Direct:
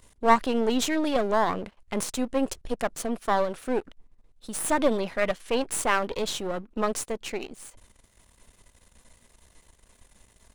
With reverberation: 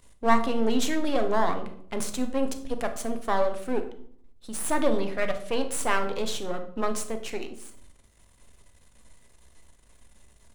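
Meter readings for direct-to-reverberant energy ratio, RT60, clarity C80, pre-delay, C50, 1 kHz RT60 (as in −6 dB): 6.5 dB, 0.60 s, 14.5 dB, 7 ms, 10.5 dB, 0.55 s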